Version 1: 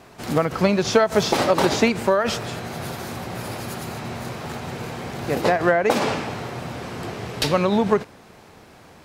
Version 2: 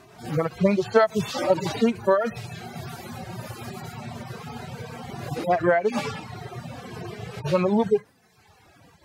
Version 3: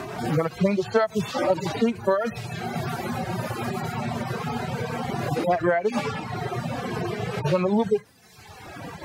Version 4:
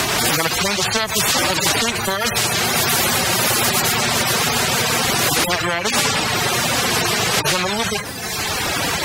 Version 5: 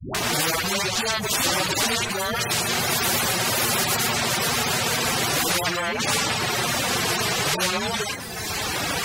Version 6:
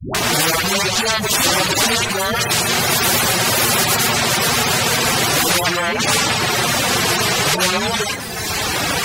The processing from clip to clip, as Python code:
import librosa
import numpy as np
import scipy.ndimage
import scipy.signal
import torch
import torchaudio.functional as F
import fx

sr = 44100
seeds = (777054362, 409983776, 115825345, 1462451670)

y1 = fx.hpss_only(x, sr, part='harmonic')
y1 = fx.dereverb_blind(y1, sr, rt60_s=1.2)
y2 = fx.band_squash(y1, sr, depth_pct=70)
y3 = fx.spectral_comp(y2, sr, ratio=4.0)
y3 = y3 * librosa.db_to_amplitude(6.0)
y4 = fx.dispersion(y3, sr, late='highs', ms=147.0, hz=400.0)
y4 = y4 * librosa.db_to_amplitude(-5.0)
y5 = fx.echo_feedback(y4, sr, ms=163, feedback_pct=51, wet_db=-21)
y5 = y5 * librosa.db_to_amplitude(6.5)